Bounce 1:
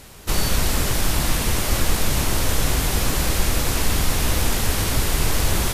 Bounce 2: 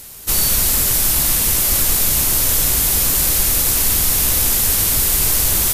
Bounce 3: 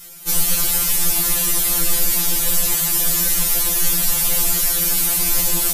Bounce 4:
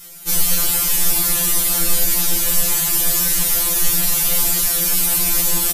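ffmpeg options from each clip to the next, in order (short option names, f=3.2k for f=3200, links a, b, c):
-af "aemphasis=mode=production:type=75fm,volume=-2dB"
-af "afftfilt=real='re*2.83*eq(mod(b,8),0)':imag='im*2.83*eq(mod(b,8),0)':win_size=2048:overlap=0.75"
-filter_complex "[0:a]asplit=2[a][b];[b]adelay=39,volume=-7dB[c];[a][c]amix=inputs=2:normalize=0"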